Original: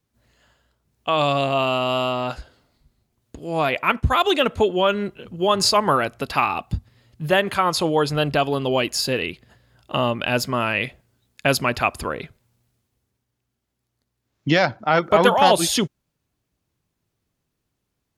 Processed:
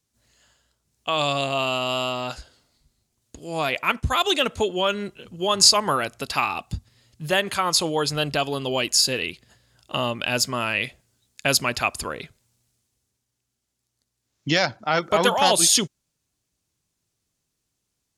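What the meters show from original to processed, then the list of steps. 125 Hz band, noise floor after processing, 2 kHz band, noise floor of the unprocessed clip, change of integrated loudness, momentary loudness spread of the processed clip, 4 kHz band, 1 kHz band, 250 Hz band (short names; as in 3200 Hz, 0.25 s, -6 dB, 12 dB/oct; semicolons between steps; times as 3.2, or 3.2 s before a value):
-5.0 dB, -79 dBFS, -1.5 dB, -78 dBFS, -1.0 dB, 16 LU, +2.5 dB, -4.0 dB, -5.0 dB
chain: bell 7300 Hz +13 dB 2 oct; gain -5 dB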